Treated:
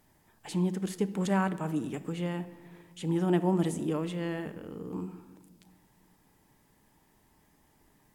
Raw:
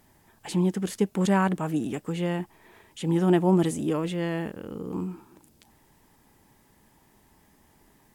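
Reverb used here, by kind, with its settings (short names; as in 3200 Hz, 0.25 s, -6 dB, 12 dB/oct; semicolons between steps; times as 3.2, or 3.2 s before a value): shoebox room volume 1400 m³, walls mixed, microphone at 0.44 m; gain -5.5 dB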